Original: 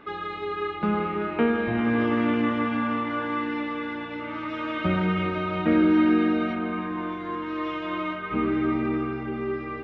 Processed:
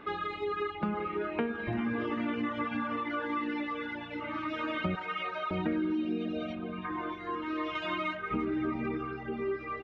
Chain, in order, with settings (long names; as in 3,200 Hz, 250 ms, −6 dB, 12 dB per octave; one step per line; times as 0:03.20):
0:04.95–0:05.51: high-pass filter 490 Hz 24 dB per octave
0:05.95–0:06.84: gain on a spectral selection 730–2,300 Hz −9 dB
reverb reduction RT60 1.7 s
0:07.75–0:08.17: high-shelf EQ 2,100 Hz +8.5 dB
downward compressor 5 to 1, threshold −29 dBFS, peak gain reduction 10.5 dB
far-end echo of a speakerphone 340 ms, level −20 dB
convolution reverb RT60 3.3 s, pre-delay 29 ms, DRR 18.5 dB